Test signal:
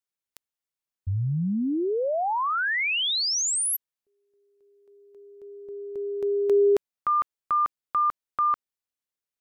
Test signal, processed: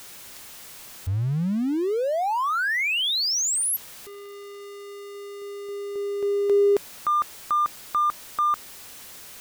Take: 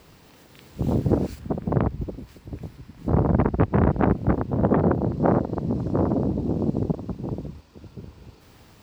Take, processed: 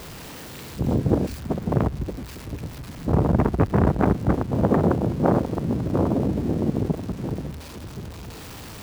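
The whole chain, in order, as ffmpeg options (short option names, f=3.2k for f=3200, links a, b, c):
-af "aeval=exprs='val(0)+0.5*0.0188*sgn(val(0))':c=same"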